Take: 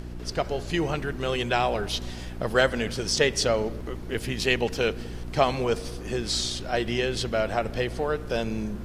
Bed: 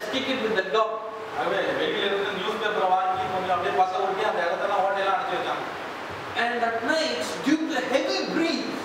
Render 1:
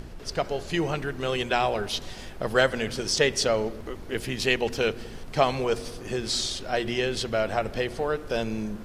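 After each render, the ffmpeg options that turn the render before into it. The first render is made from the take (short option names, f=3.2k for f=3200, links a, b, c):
-af "bandreject=f=60:t=h:w=4,bandreject=f=120:t=h:w=4,bandreject=f=180:t=h:w=4,bandreject=f=240:t=h:w=4,bandreject=f=300:t=h:w=4,bandreject=f=360:t=h:w=4"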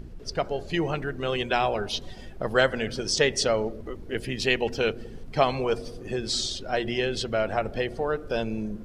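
-af "afftdn=nr=11:nf=-40"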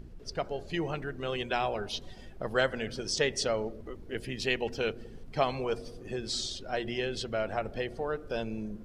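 -af "volume=-6dB"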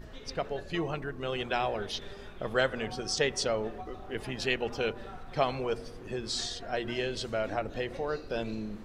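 -filter_complex "[1:a]volume=-23.5dB[a];[0:a][a]amix=inputs=2:normalize=0"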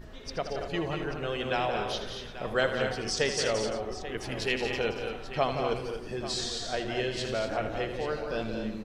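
-af "aecho=1:1:79|175|229|260|345|837:0.299|0.398|0.398|0.237|0.141|0.211"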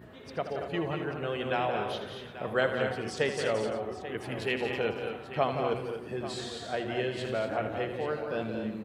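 -af "highpass=f=87:w=0.5412,highpass=f=87:w=1.3066,equalizer=f=5.6k:t=o:w=0.97:g=-13.5"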